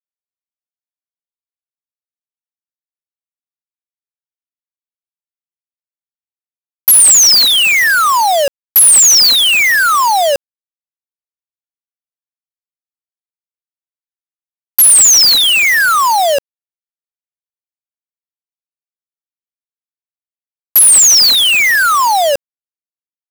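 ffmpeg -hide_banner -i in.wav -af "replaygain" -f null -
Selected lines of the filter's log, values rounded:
track_gain = -10.5 dB
track_peak = 0.507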